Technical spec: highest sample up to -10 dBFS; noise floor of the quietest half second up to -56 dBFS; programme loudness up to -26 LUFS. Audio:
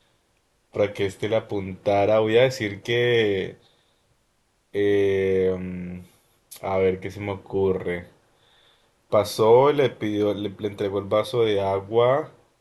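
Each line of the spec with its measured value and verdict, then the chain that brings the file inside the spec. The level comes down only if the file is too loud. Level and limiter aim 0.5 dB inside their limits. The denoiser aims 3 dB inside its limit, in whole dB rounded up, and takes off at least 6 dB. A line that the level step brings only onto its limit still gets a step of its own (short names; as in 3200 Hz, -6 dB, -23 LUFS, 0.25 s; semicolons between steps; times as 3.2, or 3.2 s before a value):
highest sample -5.5 dBFS: fail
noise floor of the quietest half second -67 dBFS: OK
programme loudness -23.0 LUFS: fail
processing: gain -3.5 dB; limiter -10.5 dBFS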